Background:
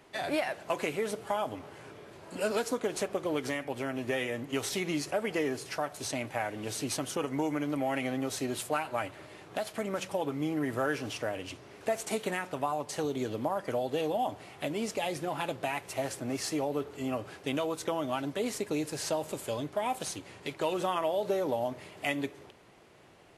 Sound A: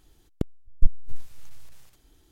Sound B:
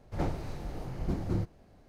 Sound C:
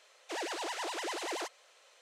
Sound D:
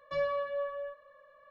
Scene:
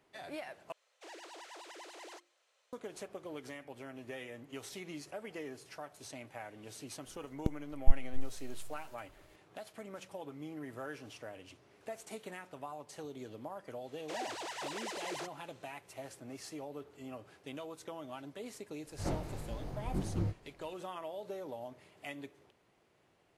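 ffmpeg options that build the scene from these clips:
-filter_complex "[3:a]asplit=2[a][b];[0:a]volume=-13dB[c];[a]bandreject=f=50:t=h:w=6,bandreject=f=100:t=h:w=6,bandreject=f=150:t=h:w=6,bandreject=f=200:t=h:w=6,bandreject=f=250:t=h:w=6,bandreject=f=300:t=h:w=6,bandreject=f=350:t=h:w=6[d];[2:a]flanger=delay=18:depth=4.7:speed=1.5[e];[c]asplit=2[f][g];[f]atrim=end=0.724[h];[d]atrim=end=2.01,asetpts=PTS-STARTPTS,volume=-13dB[i];[g]atrim=start=2.726[j];[1:a]atrim=end=2.31,asetpts=PTS-STARTPTS,volume=-5.5dB,afade=t=in:d=0.004:c=hsin,afade=t=out:st=2.306:d=0.004:c=hsin,adelay=7050[k];[b]atrim=end=2.01,asetpts=PTS-STARTPTS,volume=-4.5dB,afade=t=in:d=0.1,afade=t=out:st=1.91:d=0.1,adelay=13790[l];[e]atrim=end=1.88,asetpts=PTS-STARTPTS,volume=-1dB,afade=t=in:d=0.004:c=hsin,afade=t=out:st=1.876:d=0.004:c=hsin,adelay=18860[m];[h][i]acrossfade=d=0.004:c1=hsin:c2=hsin[n];[n][j]acrossfade=d=0.004:c1=hsin:c2=hsin[o];[o][k][l][m]amix=inputs=4:normalize=0"

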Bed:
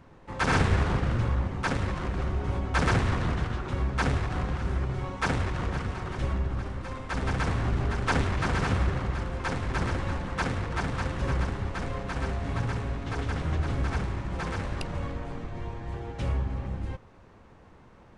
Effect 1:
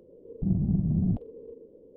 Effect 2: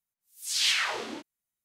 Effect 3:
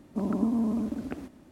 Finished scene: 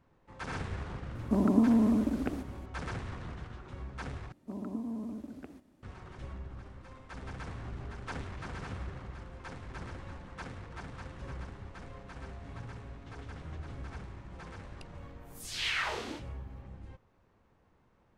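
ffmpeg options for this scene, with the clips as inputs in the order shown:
-filter_complex "[3:a]asplit=2[a][b];[0:a]volume=-14.5dB[c];[a]acontrast=63[d];[2:a]acrossover=split=2900[e][f];[f]acompressor=threshold=-40dB:ratio=4:attack=1:release=60[g];[e][g]amix=inputs=2:normalize=0[h];[c]asplit=2[i][j];[i]atrim=end=4.324[k];[b]atrim=end=1.51,asetpts=PTS-STARTPTS,volume=-11dB[l];[j]atrim=start=5.826[m];[d]atrim=end=1.51,asetpts=PTS-STARTPTS,volume=-4dB,afade=t=in:d=0.004:c=hsin,afade=t=out:st=1.506:d=0.004:c=hsin,adelay=1150[n];[h]atrim=end=1.64,asetpts=PTS-STARTPTS,volume=-2.5dB,afade=t=in:d=0.004:c=hsin,afade=t=out:st=1.636:d=0.004:c=hsin,adelay=14980[o];[k][l]acrossfade=d=0.004:c1=hsin:c2=hsin[p];[p][m]acrossfade=d=0.004:c1=hsin:c2=hsin[q];[q][n][o]amix=inputs=3:normalize=0"

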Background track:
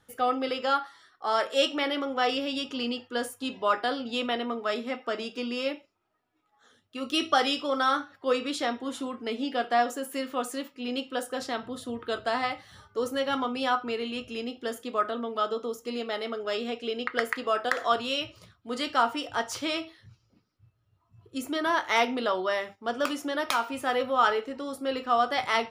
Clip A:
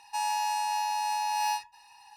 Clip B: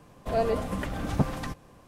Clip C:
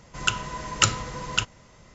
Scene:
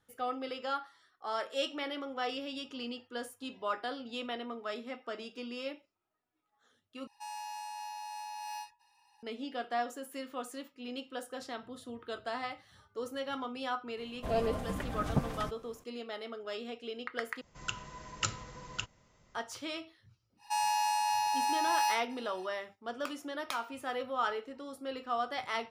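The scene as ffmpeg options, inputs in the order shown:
-filter_complex "[1:a]asplit=2[a][b];[0:a]volume=-9.5dB,asplit=3[c][d][e];[c]atrim=end=7.074[f];[a]atrim=end=2.16,asetpts=PTS-STARTPTS,volume=-13dB[g];[d]atrim=start=9.226:end=17.414[h];[3:a]atrim=end=1.94,asetpts=PTS-STARTPTS,volume=-13.5dB[i];[e]atrim=start=19.346[j];[2:a]atrim=end=1.87,asetpts=PTS-STARTPTS,volume=-5.5dB,afade=t=in:d=0.004:c=hsin,afade=t=out:st=1.866:d=0.004:c=hsin,adelay=13970[k];[b]atrim=end=2.16,asetpts=PTS-STARTPTS,volume=-1dB,afade=t=in:d=0.1,afade=t=out:st=2.06:d=0.1,adelay=20370[l];[f][g]acrossfade=d=0.004:c1=hsin:c2=hsin[m];[m][h]acrossfade=d=0.004:c1=hsin:c2=hsin[n];[n][i]acrossfade=d=0.004:c1=hsin:c2=hsin[o];[o][j]acrossfade=d=0.004:c1=hsin:c2=hsin[p];[p][k][l]amix=inputs=3:normalize=0"

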